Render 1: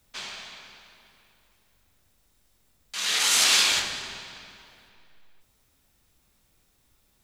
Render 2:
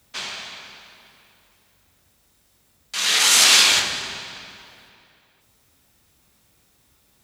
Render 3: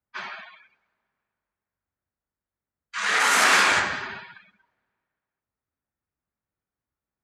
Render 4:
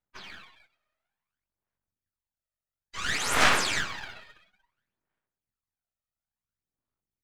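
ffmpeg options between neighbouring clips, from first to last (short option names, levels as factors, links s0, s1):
-af "highpass=62,volume=2.11"
-af "afftdn=nr=29:nf=-34,highshelf=f=2400:t=q:w=1.5:g=-12.5,volume=1.41"
-filter_complex "[0:a]aphaser=in_gain=1:out_gain=1:delay=1.6:decay=0.69:speed=0.58:type=sinusoidal,acrossover=split=3000[s0][s1];[s0]aeval=exprs='max(val(0),0)':c=same[s2];[s2][s1]amix=inputs=2:normalize=0,volume=0.473"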